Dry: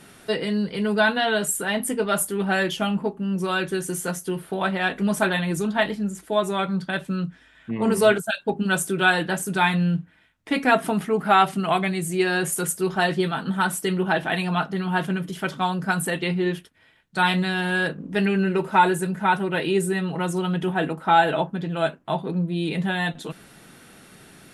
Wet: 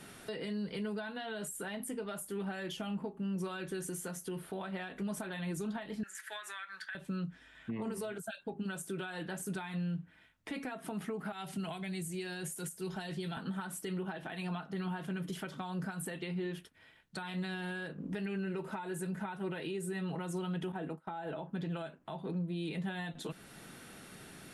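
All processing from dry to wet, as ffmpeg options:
ffmpeg -i in.wav -filter_complex "[0:a]asettb=1/sr,asplit=3[link_01][link_02][link_03];[link_01]atrim=end=6.034[link_04];[link_02]atrim=start=6.03:end=6.95,asetpts=PTS-STARTPTS,afade=type=in:duration=0.004:curve=qsin,afade=type=out:start_time=0.916:duration=0.004:curve=qsin,highpass=frequency=1700:width_type=q:width=7.2,acompressor=threshold=-32dB:ratio=2:attack=3.2:release=140:knee=1:detection=peak[link_05];[link_03]atrim=start=6.946[link_06];[link_04][link_05]acrossfade=duration=0.004:curve1=hsin:curve2=qsin[link_07];[link_07][link_06]acrossfade=duration=0.004:curve1=qsin:curve2=hsin,asettb=1/sr,asplit=3[link_08][link_09][link_10];[link_08]atrim=end=11.324[link_11];[link_09]atrim=start=11.32:end=13.37,asetpts=PTS-STARTPTS,afade=type=in:duration=0.004:curve=qsin,afade=type=out:start_time=2.046:duration=0.004:curve=qsin,asuperstop=centerf=1200:order=4:qfactor=7.8,acrossover=split=170|3000[link_12][link_13][link_14];[link_13]acompressor=threshold=-42dB:ratio=1.5:attack=3.2:release=140:knee=2.83:detection=peak[link_15];[link_12][link_15][link_14]amix=inputs=3:normalize=0[link_16];[link_10]atrim=start=13.366[link_17];[link_11][link_16]acrossfade=duration=0.004:curve1=hsin:curve2=qsin[link_18];[link_18][link_17]acrossfade=duration=0.004:curve1=qsin:curve2=hsin,asettb=1/sr,asplit=3[link_19][link_20][link_21];[link_19]atrim=end=20.724[link_22];[link_20]atrim=start=20.72:end=21.43,asetpts=PTS-STARTPTS,afade=type=in:duration=0.004:curve=qsin,afade=type=out:start_time=0.706:duration=0.004:curve=qsin,agate=range=-33dB:threshold=-28dB:ratio=3:release=100:detection=peak,acrossover=split=1300|5400[link_23][link_24][link_25];[link_23]acompressor=threshold=-18dB:ratio=4[link_26];[link_24]acompressor=threshold=-37dB:ratio=4[link_27];[link_25]acompressor=threshold=-59dB:ratio=4[link_28];[link_26][link_27][link_28]amix=inputs=3:normalize=0[link_29];[link_21]atrim=start=21.426[link_30];[link_22][link_29]acrossfade=duration=0.004:curve1=hsin:curve2=qsin[link_31];[link_31][link_30]acrossfade=duration=0.004:curve1=qsin:curve2=hsin,acompressor=threshold=-24dB:ratio=6,alimiter=level_in=2.5dB:limit=-24dB:level=0:latency=1:release=283,volume=-2.5dB,acrossover=split=440[link_32][link_33];[link_33]acompressor=threshold=-37dB:ratio=3[link_34];[link_32][link_34]amix=inputs=2:normalize=0,volume=-3.5dB" out.wav

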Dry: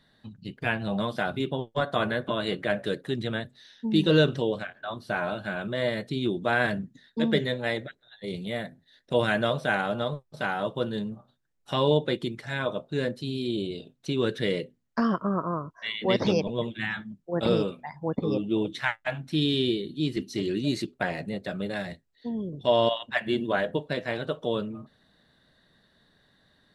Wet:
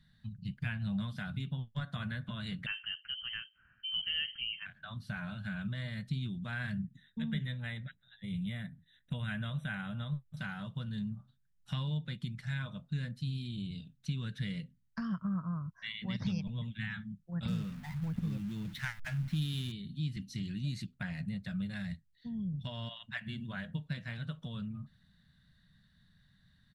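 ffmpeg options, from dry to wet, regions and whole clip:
ffmpeg -i in.wav -filter_complex "[0:a]asettb=1/sr,asplit=3[link_01][link_02][link_03];[link_01]atrim=end=2.664[link_04];[link_02]atrim=start=2.66:end=4.66,asetpts=PTS-STARTPTS,afade=type=in:duration=0.004:curve=qsin,afade=type=out:start_time=1.996:duration=0.004:curve=qsin,highpass=180,lowpass=frequency=2800:width_type=q:width=0.5098,lowpass=frequency=2800:width_type=q:width=0.6013,lowpass=frequency=2800:width_type=q:width=0.9,lowpass=frequency=2800:width_type=q:width=2.563,afreqshift=-3300[link_05];[link_03]atrim=start=4.656[link_06];[link_04][link_05]acrossfade=duration=0.004:curve1=hsin:curve2=qsin[link_07];[link_07][link_06]acrossfade=duration=0.004:curve1=qsin:curve2=hsin,asettb=1/sr,asplit=3[link_08][link_09][link_10];[link_08]atrim=end=6.844[link_11];[link_09]atrim=start=6.84:end=10.37,asetpts=PTS-STARTPTS,afade=type=in:duration=0.004:curve=qsin,afade=type=out:start_time=3.526:duration=0.004:curve=qsin,asuperstop=centerf=4800:order=20:qfactor=2.7,equalizer=frequency=6400:width=5.5:gain=-13.5[link_12];[link_10]atrim=start=10.366[link_13];[link_11][link_12]acrossfade=duration=0.004:curve1=hsin:curve2=qsin[link_14];[link_14][link_13]acrossfade=duration=0.004:curve1=qsin:curve2=hsin,asettb=1/sr,asplit=3[link_15][link_16][link_17];[link_15]atrim=end=17.484[link_18];[link_16]atrim=start=17.48:end=19.72,asetpts=PTS-STARTPTS,afade=type=in:duration=0.004:curve=qsin,afade=type=out:start_time=2.236:duration=0.004:curve=qsin,aeval=exprs='val(0)+0.5*0.0168*sgn(val(0))':channel_layout=same,adynamicsmooth=sensitivity=7.5:basefreq=1400,acrusher=bits=9:dc=4:mix=0:aa=0.000001[link_19];[link_17]atrim=start=19.716[link_20];[link_18][link_19]acrossfade=duration=0.004:curve1=hsin:curve2=qsin[link_21];[link_21][link_20]acrossfade=duration=0.004:curve1=qsin:curve2=hsin,lowshelf=frequency=140:gain=4,acompressor=threshold=-31dB:ratio=2,firequalizer=gain_entry='entry(180,0);entry(350,-28);entry(690,-20);entry(1500,-8)':delay=0.05:min_phase=1,volume=1dB" out.wav

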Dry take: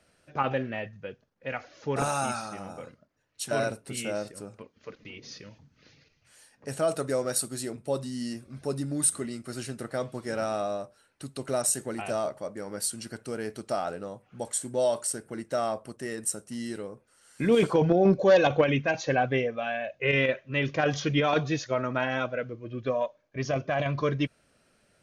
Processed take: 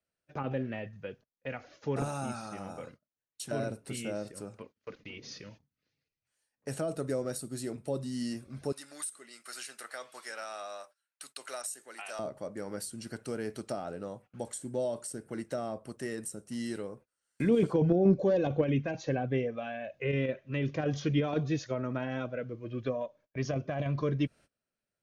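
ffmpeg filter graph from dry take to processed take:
ffmpeg -i in.wav -filter_complex "[0:a]asettb=1/sr,asplit=3[link_01][link_02][link_03];[link_01]atrim=end=8.724[link_04];[link_02]atrim=start=8.72:end=12.19,asetpts=PTS-STARTPTS,afade=type=in:duration=0.004:curve=qsin,afade=type=out:start_time=3.466:duration=0.004:curve=qsin,highpass=1400,equalizer=frequency=4900:width=0.34:gain=-3,acontrast=67[link_05];[link_03]atrim=start=12.186[link_06];[link_04][link_05]acrossfade=duration=0.004:curve1=hsin:curve2=qsin[link_07];[link_07][link_06]acrossfade=duration=0.004:curve1=qsin:curve2=hsin,agate=range=-24dB:threshold=-51dB:ratio=16:detection=peak,acrossover=split=460[link_08][link_09];[link_09]acompressor=threshold=-39dB:ratio=4[link_10];[link_08][link_10]amix=inputs=2:normalize=0,volume=-1dB" out.wav

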